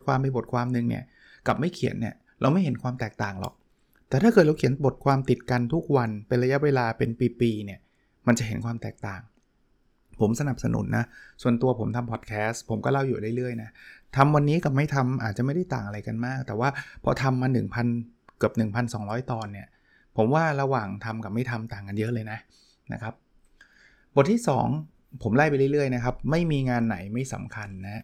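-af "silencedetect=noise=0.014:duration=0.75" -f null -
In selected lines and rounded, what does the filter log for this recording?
silence_start: 9.20
silence_end: 10.20 | silence_duration: 0.99
silence_start: 23.11
silence_end: 24.16 | silence_duration: 1.05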